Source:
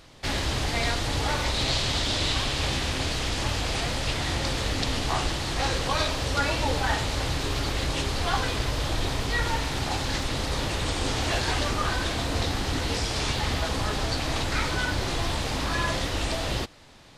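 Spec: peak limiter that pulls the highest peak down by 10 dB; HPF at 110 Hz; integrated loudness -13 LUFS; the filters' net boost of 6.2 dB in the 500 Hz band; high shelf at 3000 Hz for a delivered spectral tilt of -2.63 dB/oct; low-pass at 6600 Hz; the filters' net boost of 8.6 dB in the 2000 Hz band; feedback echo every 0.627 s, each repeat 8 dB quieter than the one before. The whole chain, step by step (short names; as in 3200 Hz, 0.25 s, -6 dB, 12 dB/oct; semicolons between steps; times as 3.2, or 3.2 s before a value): HPF 110 Hz; LPF 6600 Hz; bell 500 Hz +7 dB; bell 2000 Hz +8 dB; high shelf 3000 Hz +6.5 dB; limiter -14.5 dBFS; feedback echo 0.627 s, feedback 40%, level -8 dB; gain +9.5 dB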